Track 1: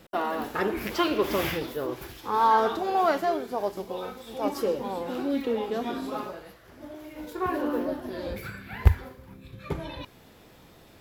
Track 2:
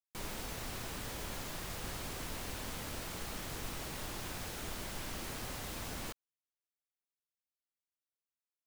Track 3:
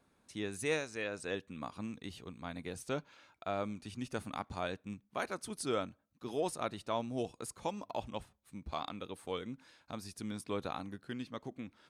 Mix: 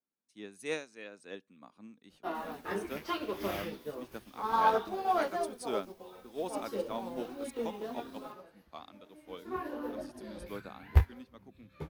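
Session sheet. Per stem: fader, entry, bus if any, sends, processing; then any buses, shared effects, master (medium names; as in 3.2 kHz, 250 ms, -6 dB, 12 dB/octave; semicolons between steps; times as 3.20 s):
+0.5 dB, 2.10 s, no send, detune thickener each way 13 cents
-12.0 dB, 2.20 s, no send, reverb removal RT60 2 s; treble shelf 10 kHz +10 dB
+1.5 dB, 0.00 s, no send, resonant low shelf 150 Hz -10.5 dB, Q 1.5; three bands expanded up and down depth 40%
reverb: none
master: band-stop 7.4 kHz, Q 14; upward expansion 1.5:1, over -43 dBFS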